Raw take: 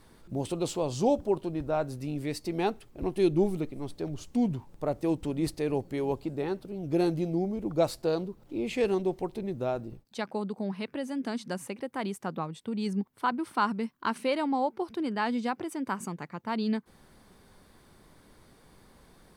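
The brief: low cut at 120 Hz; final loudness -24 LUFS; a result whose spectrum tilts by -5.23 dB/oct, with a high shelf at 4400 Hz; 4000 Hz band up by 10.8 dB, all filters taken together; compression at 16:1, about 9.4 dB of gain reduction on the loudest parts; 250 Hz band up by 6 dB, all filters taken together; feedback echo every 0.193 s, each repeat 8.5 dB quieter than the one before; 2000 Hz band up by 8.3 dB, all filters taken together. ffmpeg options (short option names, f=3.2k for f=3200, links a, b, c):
-af "highpass=120,equalizer=f=250:t=o:g=8,equalizer=f=2k:t=o:g=8,equalizer=f=4k:t=o:g=9,highshelf=f=4.4k:g=3.5,acompressor=threshold=-24dB:ratio=16,aecho=1:1:193|386|579|772:0.376|0.143|0.0543|0.0206,volume=6dB"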